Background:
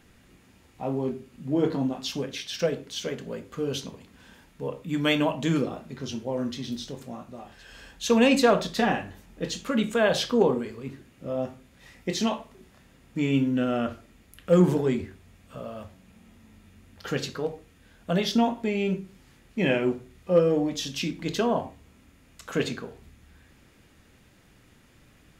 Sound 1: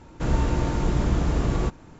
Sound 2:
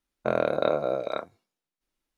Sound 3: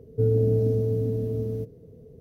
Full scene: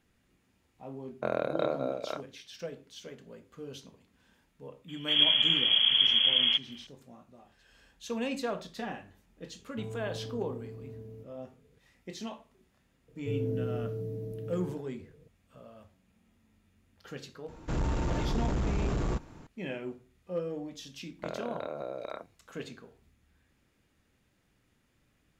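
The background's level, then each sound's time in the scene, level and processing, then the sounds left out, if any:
background -14 dB
0.97 add 2 -6 dB
4.88 add 1 -4 dB + inverted band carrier 3300 Hz
9.59 add 3 -16.5 dB + soft clip -18 dBFS
13.08 add 3 -12.5 dB + comb 6.2 ms, depth 77%
17.48 add 1 -3.5 dB + soft clip -21.5 dBFS
20.98 add 2 -3.5 dB + compressor 4:1, threshold -30 dBFS

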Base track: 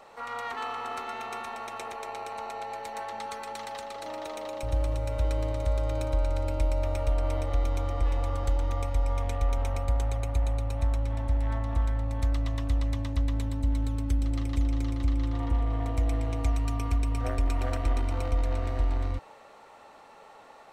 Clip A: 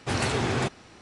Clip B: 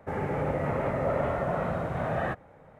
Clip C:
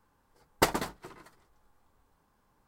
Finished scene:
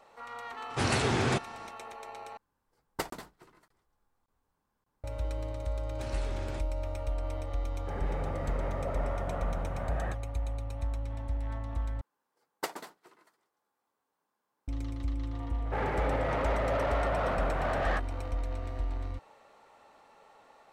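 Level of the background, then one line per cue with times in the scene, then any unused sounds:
base track -7 dB
0.7 add A -1.5 dB
2.37 replace with C -10 dB + crackling interface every 0.58 s, samples 1024, zero, from 0.73
5.92 add A -17.5 dB
7.8 add B -8.5 dB
12.01 replace with C -10 dB + HPF 310 Hz
15.65 add B -7.5 dB + overdrive pedal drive 20 dB, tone 3300 Hz, clips at -15.5 dBFS

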